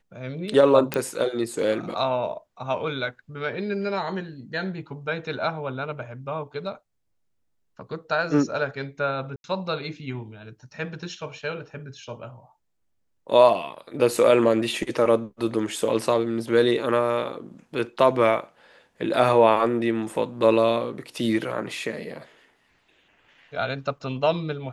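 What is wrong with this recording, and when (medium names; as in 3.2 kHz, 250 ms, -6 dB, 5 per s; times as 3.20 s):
0.94 s: pop -9 dBFS
9.36–9.44 s: dropout 81 ms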